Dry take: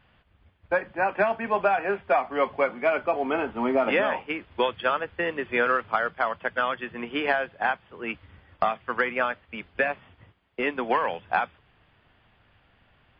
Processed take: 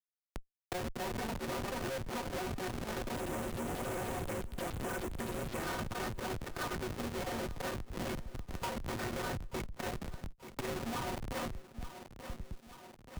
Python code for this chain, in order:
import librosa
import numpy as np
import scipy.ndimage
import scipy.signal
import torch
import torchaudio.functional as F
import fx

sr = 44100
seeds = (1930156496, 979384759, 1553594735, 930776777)

y = fx.cycle_switch(x, sr, every=3, mode='inverted')
y = fx.power_curve(y, sr, exponent=0.35)
y = fx.dmg_buzz(y, sr, base_hz=100.0, harmonics=3, level_db=-52.0, tilt_db=-3, odd_only=False)
y = fx.air_absorb(y, sr, metres=230.0)
y = fx.stiff_resonator(y, sr, f0_hz=110.0, decay_s=0.23, stiffness=0.03)
y = fx.schmitt(y, sr, flips_db=-30.0)
y = fx.peak_eq(y, sr, hz=3900.0, db=-4.5, octaves=1.1, at=(3.16, 5.63))
y = 10.0 ** (-39.0 / 20.0) * (np.abs((y / 10.0 ** (-39.0 / 20.0) + 3.0) % 4.0 - 2.0) - 1.0)
y = fx.echo_feedback(y, sr, ms=882, feedback_pct=28, wet_db=-21)
y = fx.band_squash(y, sr, depth_pct=70)
y = F.gain(torch.from_numpy(y), 3.5).numpy()